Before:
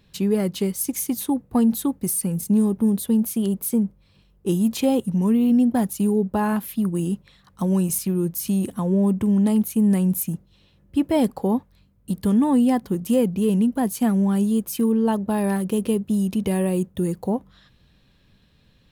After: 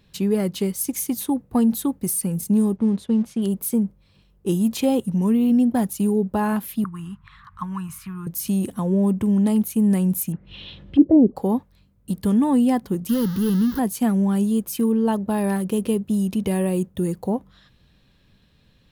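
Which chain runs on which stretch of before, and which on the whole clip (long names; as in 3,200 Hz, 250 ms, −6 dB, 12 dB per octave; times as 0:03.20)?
0:02.76–0:03.42: mu-law and A-law mismatch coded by A + high-frequency loss of the air 110 metres
0:06.84–0:08.27: drawn EQ curve 110 Hz 0 dB, 550 Hz −29 dB, 1,100 Hz +10 dB, 5,500 Hz −15 dB + upward compression, threshold −37 dBFS
0:10.32–0:11.36: upward compression, threshold −30 dBFS + envelope-controlled low-pass 360–4,100 Hz down, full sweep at −17 dBFS
0:13.09–0:13.79: converter with a step at zero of −26.5 dBFS + high-shelf EQ 6,400 Hz +9 dB + phaser with its sweep stopped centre 2,400 Hz, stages 6
whole clip: no processing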